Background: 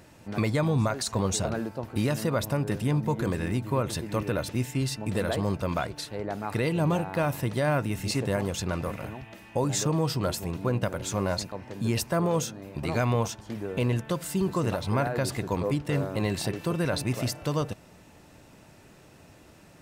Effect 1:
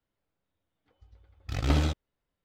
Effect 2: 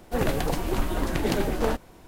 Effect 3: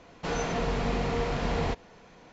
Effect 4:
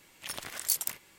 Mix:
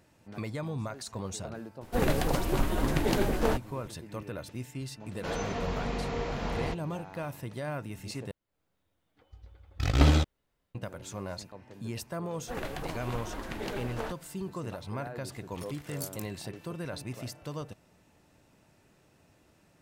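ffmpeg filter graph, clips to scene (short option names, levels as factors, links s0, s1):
-filter_complex "[2:a]asplit=2[s0][s1];[0:a]volume=0.299[s2];[1:a]dynaudnorm=f=160:g=3:m=3.16[s3];[s1]equalizer=f=1700:w=0.32:g=7[s4];[s2]asplit=2[s5][s6];[s5]atrim=end=8.314[s7];[s3]atrim=end=2.44,asetpts=PTS-STARTPTS,volume=0.596[s8];[s6]atrim=start=10.746[s9];[s0]atrim=end=2.07,asetpts=PTS-STARTPTS,volume=0.794,afade=t=in:d=0.004:c=hsin,afade=t=out:st=2.066:d=0.004:c=hsin,adelay=1810[s10];[3:a]atrim=end=2.32,asetpts=PTS-STARTPTS,volume=0.596,afade=t=in:d=0.004:c=hsin,afade=t=out:st=2.316:d=0.004:c=hsin,adelay=5000[s11];[s4]atrim=end=2.07,asetpts=PTS-STARTPTS,volume=0.188,afade=t=in:d=0.004:c=hsin,afade=t=out:st=2.066:d=0.004:c=hsin,adelay=545076S[s12];[4:a]atrim=end=1.18,asetpts=PTS-STARTPTS,volume=0.266,afade=t=in:d=0.004:c=hsin,afade=t=out:st=1.176:d=0.004:c=hsin,adelay=15320[s13];[s7][s8]acrossfade=d=0.004:c1=hsin:c2=hsin[s14];[s14][s9]acrossfade=d=0.004:c1=hsin:c2=hsin[s15];[s15][s10][s11][s12][s13]amix=inputs=5:normalize=0"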